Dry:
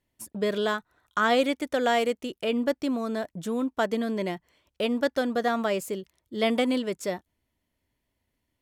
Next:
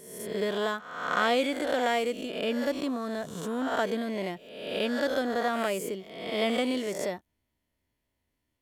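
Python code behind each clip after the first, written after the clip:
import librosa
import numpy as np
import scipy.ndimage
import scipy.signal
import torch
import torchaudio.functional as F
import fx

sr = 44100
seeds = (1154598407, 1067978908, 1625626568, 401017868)

y = fx.spec_swells(x, sr, rise_s=0.96)
y = F.gain(torch.from_numpy(y), -4.5).numpy()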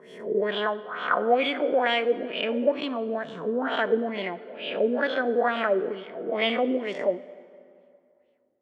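y = scipy.signal.sosfilt(scipy.signal.butter(2, 180.0, 'highpass', fs=sr, output='sos'), x)
y = fx.filter_lfo_lowpass(y, sr, shape='sine', hz=2.2, low_hz=380.0, high_hz=3200.0, q=3.6)
y = fx.rev_plate(y, sr, seeds[0], rt60_s=2.5, hf_ratio=0.65, predelay_ms=0, drr_db=15.0)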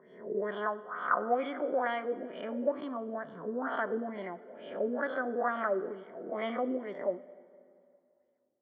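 y = fx.notch(x, sr, hz=460.0, q=14.0)
y = fx.dynamic_eq(y, sr, hz=1200.0, q=3.0, threshold_db=-42.0, ratio=4.0, max_db=6)
y = scipy.signal.savgol_filter(y, 41, 4, mode='constant')
y = F.gain(torch.from_numpy(y), -7.5).numpy()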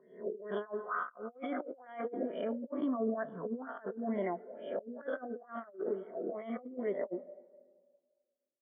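y = x + 10.0 ** (-24.0 / 20.0) * np.pad(x, (int(144 * sr / 1000.0), 0))[:len(x)]
y = fx.over_compress(y, sr, threshold_db=-38.0, ratio=-0.5)
y = fx.spectral_expand(y, sr, expansion=1.5)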